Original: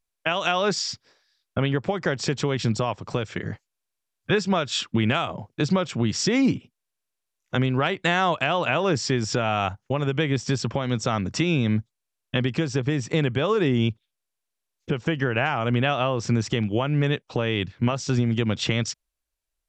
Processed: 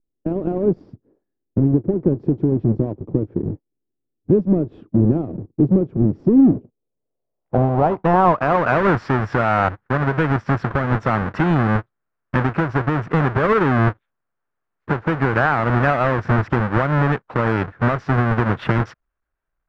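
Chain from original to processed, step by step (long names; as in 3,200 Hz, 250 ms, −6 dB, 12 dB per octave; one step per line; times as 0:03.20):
each half-wave held at its own peak
low-pass filter sweep 330 Hz → 1,500 Hz, 0:06.34–0:08.84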